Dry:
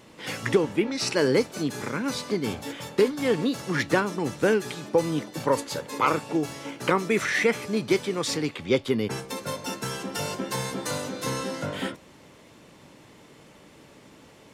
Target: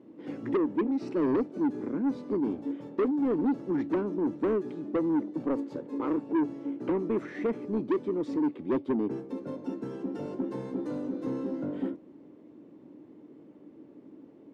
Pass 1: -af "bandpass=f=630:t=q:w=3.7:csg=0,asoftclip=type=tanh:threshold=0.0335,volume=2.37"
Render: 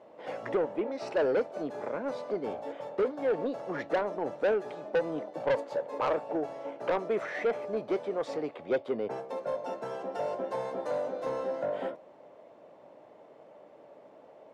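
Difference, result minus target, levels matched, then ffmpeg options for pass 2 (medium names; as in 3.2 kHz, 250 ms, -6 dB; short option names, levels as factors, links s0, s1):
250 Hz band -9.0 dB
-af "bandpass=f=300:t=q:w=3.7:csg=0,asoftclip=type=tanh:threshold=0.0335,volume=2.37"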